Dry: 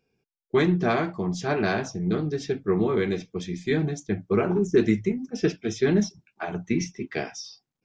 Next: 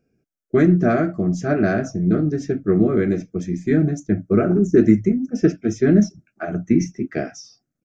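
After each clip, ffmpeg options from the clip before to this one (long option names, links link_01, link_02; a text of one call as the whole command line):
ffmpeg -i in.wav -af "firequalizer=gain_entry='entry(160,0);entry(300,4);entry(430,-6);entry(640,2);entry(920,-23);entry(1300,-2);entry(3500,-21);entry(6200,-5);entry(9500,-9)':delay=0.05:min_phase=1,volume=7dB" out.wav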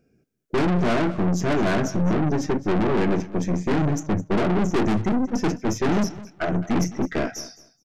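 ffmpeg -i in.wav -af "aeval=exprs='(tanh(22.4*val(0)+0.6)-tanh(0.6))/22.4':channel_layout=same,aecho=1:1:211|422:0.133|0.0213,volume=7.5dB" out.wav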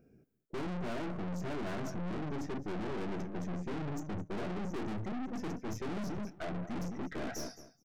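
ffmpeg -i in.wav -af "equalizer=frequency=4900:width_type=o:width=2.9:gain=-9.5,areverse,acompressor=threshold=-29dB:ratio=8,areverse,aeval=exprs='(tanh(112*val(0)+0.65)-tanh(0.65))/112':channel_layout=same,volume=4dB" out.wav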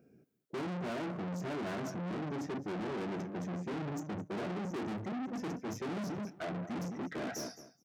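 ffmpeg -i in.wav -af "highpass=130,volume=1dB" out.wav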